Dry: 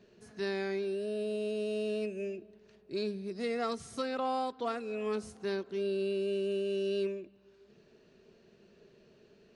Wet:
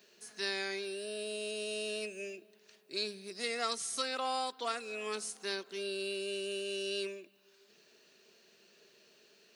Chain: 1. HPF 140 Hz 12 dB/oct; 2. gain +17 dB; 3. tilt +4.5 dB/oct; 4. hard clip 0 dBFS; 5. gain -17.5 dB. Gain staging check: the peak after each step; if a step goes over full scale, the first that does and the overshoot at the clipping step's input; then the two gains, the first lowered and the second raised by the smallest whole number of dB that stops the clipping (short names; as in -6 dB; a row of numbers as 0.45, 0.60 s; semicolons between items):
-22.5, -5.5, -1.5, -1.5, -19.0 dBFS; no overload